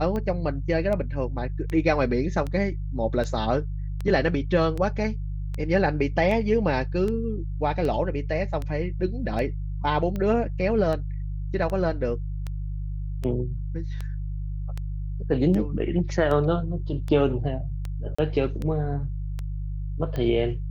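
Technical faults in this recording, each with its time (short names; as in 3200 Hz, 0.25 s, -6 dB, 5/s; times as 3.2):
hum 50 Hz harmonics 3 -30 dBFS
tick 78 rpm -19 dBFS
18.15–18.18 gap 35 ms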